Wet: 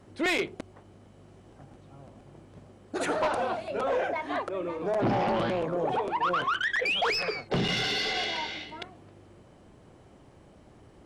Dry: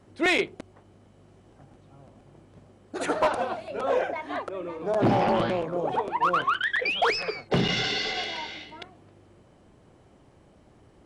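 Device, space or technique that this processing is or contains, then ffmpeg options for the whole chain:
soft clipper into limiter: -af "asoftclip=type=tanh:threshold=0.106,alimiter=limit=0.0631:level=0:latency=1:release=18,volume=1.26"

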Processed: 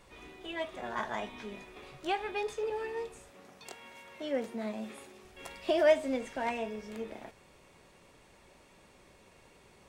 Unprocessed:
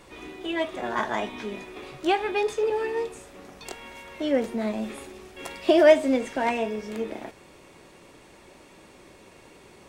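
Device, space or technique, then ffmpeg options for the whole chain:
low shelf boost with a cut just above: -filter_complex "[0:a]lowshelf=f=69:g=5.5,equalizer=f=320:t=o:w=0.56:g=-6,asettb=1/sr,asplit=3[s0][s1][s2];[s0]atrim=end=3.304[s3];[s1]atrim=start=3.3:end=5.25,asetpts=PTS-STARTPTS,afade=t=in:d=0.004:c=qsin,afade=t=out:st=1.946:d=0.004:c=qsin,highpass=130[s4];[s2]atrim=start=5.246[s5];[s3][s4]acrossfade=d=0.004:c1=hsin:c2=qsin[s6];[s6][s5]acrossfade=d=0.004:c1=qsin:c2=hsin,volume=0.398"

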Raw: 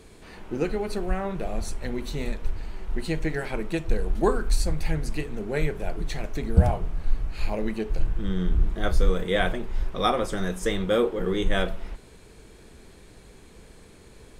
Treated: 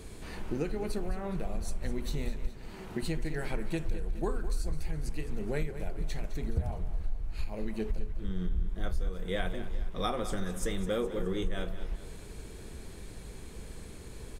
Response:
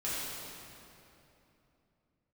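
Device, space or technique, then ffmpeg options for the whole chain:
ASMR close-microphone chain: -filter_complex "[0:a]asettb=1/sr,asplit=3[s0][s1][s2];[s0]atrim=end=2.474[s3];[s1]atrim=start=2.47:end=3.03,asetpts=PTS-STARTPTS,afade=t=in:d=0.004:c=qsin,afade=t=out:st=0.556:d=0.004:c=qsin,highpass=f=110:w=0.5412,highpass=f=110:w=1.3066[s4];[s2]atrim=start=3.026[s5];[s3][s4]acrossfade=d=0.004:c1=hsin:c2=qsin[s6];[s6][s5]acrossfade=d=0.004:c1=qsin:c2=hsin,lowshelf=f=180:g=7,acompressor=threshold=0.0316:ratio=4,highshelf=f=7400:g=6.5,aecho=1:1:209|418|627|836|1045:0.224|0.112|0.056|0.028|0.014"

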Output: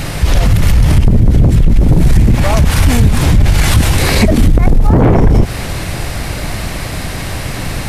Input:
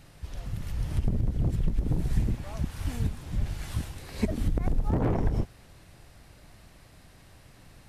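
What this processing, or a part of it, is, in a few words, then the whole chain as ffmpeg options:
mastering chain: -af "equalizer=f=2200:t=o:w=0.24:g=3,acompressor=threshold=0.0398:ratio=2.5,asoftclip=type=tanh:threshold=0.0708,asoftclip=type=hard:threshold=0.0531,alimiter=level_in=50.1:limit=0.891:release=50:level=0:latency=1,volume=0.891"

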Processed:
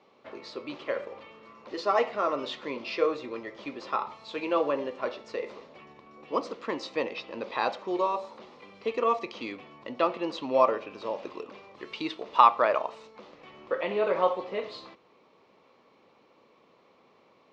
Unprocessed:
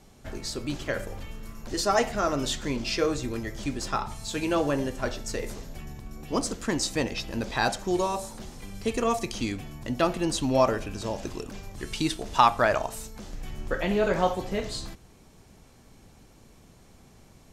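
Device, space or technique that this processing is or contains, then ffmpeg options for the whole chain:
phone earpiece: -af "highpass=420,equalizer=f=510:t=q:w=4:g=5,equalizer=f=730:t=q:w=4:g=-5,equalizer=f=1100:t=q:w=4:g=6,equalizer=f=1600:t=q:w=4:g=-9,equalizer=f=3200:t=q:w=4:g=-4,lowpass=f=3600:w=0.5412,lowpass=f=3600:w=1.3066"

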